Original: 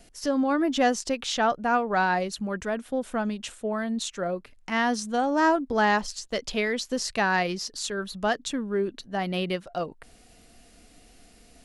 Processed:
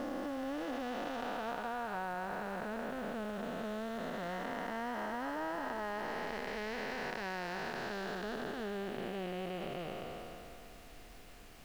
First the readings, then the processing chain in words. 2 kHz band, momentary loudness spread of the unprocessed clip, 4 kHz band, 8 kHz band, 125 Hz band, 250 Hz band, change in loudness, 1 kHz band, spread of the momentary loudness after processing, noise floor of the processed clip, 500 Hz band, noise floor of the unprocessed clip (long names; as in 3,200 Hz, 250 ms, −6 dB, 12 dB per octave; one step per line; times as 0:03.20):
−12.5 dB, 9 LU, −14.5 dB, −21.0 dB, −10.5 dB, −13.0 dB, −13.0 dB, −13.0 dB, 9 LU, −53 dBFS, −11.5 dB, −55 dBFS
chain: spectrum smeared in time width 988 ms
low-pass filter 2,900 Hz 12 dB per octave
parametric band 160 Hz −8 dB 2.6 octaves
downward compressor, threshold −40 dBFS, peak gain reduction 10.5 dB
background noise pink −63 dBFS
level +4 dB